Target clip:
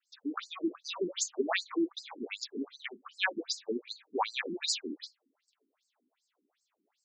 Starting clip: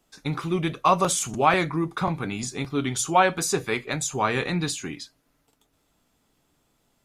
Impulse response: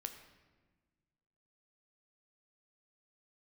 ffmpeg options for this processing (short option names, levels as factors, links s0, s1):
-af "adynamicequalizer=threshold=0.00562:dfrequency=4100:dqfactor=1.4:tfrequency=4100:tqfactor=1.4:attack=5:release=100:ratio=0.375:range=3:mode=boostabove:tftype=bell,afftfilt=real='re*between(b*sr/1024,270*pow(6100/270,0.5+0.5*sin(2*PI*2.6*pts/sr))/1.41,270*pow(6100/270,0.5+0.5*sin(2*PI*2.6*pts/sr))*1.41)':imag='im*between(b*sr/1024,270*pow(6100/270,0.5+0.5*sin(2*PI*2.6*pts/sr))/1.41,270*pow(6100/270,0.5+0.5*sin(2*PI*2.6*pts/sr))*1.41)':win_size=1024:overlap=0.75,volume=0.794"